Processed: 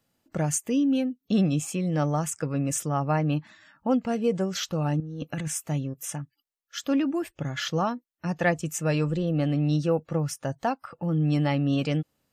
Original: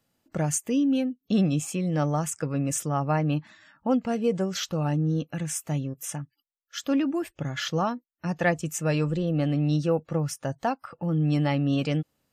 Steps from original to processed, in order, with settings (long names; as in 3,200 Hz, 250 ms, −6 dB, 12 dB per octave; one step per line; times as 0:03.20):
0:05.00–0:05.48: compressor whose output falls as the input rises −33 dBFS, ratio −1